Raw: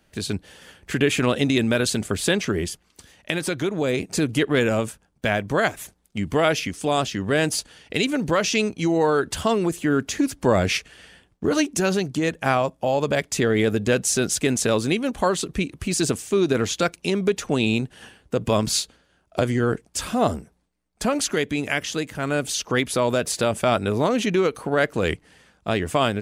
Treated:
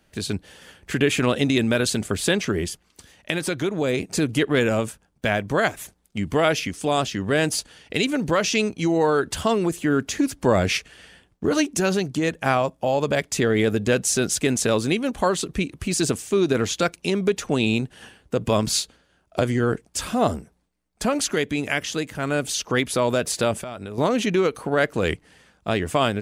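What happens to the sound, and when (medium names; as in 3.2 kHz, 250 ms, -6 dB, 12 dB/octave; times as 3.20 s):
23.54–23.98 s: compression 12:1, threshold -29 dBFS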